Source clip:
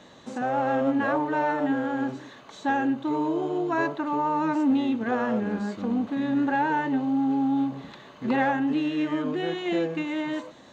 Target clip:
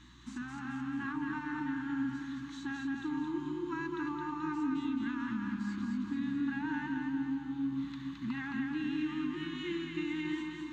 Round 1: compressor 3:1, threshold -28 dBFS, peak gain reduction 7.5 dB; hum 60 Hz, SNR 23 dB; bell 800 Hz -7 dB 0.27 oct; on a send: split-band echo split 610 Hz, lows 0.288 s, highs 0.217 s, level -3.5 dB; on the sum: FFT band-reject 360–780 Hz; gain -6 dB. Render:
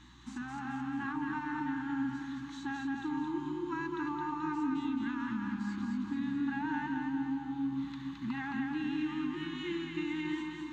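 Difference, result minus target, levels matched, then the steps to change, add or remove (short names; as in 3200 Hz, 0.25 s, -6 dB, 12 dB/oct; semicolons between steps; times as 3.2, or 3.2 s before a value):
1000 Hz band +3.5 dB
change: bell 800 Hz -17.5 dB 0.27 oct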